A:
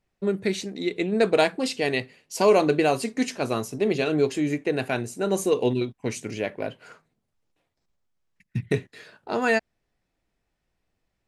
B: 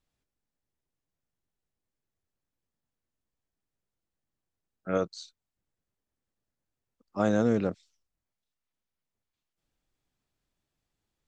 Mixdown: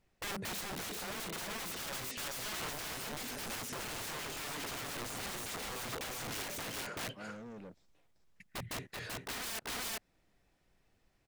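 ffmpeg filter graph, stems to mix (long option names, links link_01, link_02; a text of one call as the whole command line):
ffmpeg -i stem1.wav -i stem2.wav -filter_complex "[0:a]acompressor=threshold=-26dB:ratio=16,aeval=exprs='(mod(47.3*val(0)+1,2)-1)/47.3':channel_layout=same,volume=2.5dB,asplit=2[link_01][link_02];[link_02]volume=-3dB[link_03];[1:a]asoftclip=type=tanh:threshold=-30dB,volume=-15dB[link_04];[link_03]aecho=0:1:386:1[link_05];[link_01][link_04][link_05]amix=inputs=3:normalize=0,alimiter=level_in=10.5dB:limit=-24dB:level=0:latency=1:release=12,volume=-10.5dB" out.wav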